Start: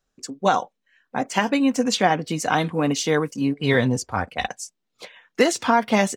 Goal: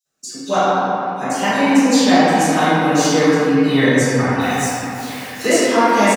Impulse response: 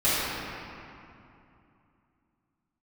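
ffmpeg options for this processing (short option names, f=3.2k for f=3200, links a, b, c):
-filter_complex "[0:a]asettb=1/sr,asplit=3[a][b][c];[a]atrim=end=4.404[d];[b]atrim=start=4.4:end=5.4,asetpts=PTS-STARTPTS,afade=t=in:d=0.004:c=qsin,afade=t=out:st=0.996:d=0.004:c=qsin,aeval=exprs='val(0)+0.5*0.0178*sgn(val(0))':c=same[e];[c]atrim=start=5.396[f];[d][e]acrossfade=d=0.004:c1=hsin:c2=qsin[g];[g][f]acrossfade=d=0.004:c1=qsin:c2=hsin,highpass=150,highshelf=f=4.6k:g=9,acrossover=split=3600[h][i];[h]adelay=50[j];[j][i]amix=inputs=2:normalize=0[k];[1:a]atrim=start_sample=2205[l];[k][l]afir=irnorm=-1:irlink=0,volume=-10dB"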